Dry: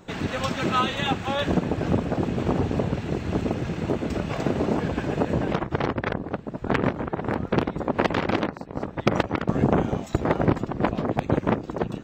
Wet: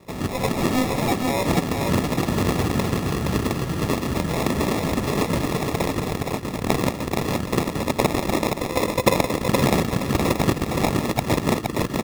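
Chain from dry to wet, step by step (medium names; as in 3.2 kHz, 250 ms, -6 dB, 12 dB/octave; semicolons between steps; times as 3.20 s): recorder AGC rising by 6.9 dB/s; 8.54–9.17 s: peaking EQ 510 Hz +13.5 dB 0.34 oct; sample-and-hold 29×; feedback delay 469 ms, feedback 29%, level -4 dB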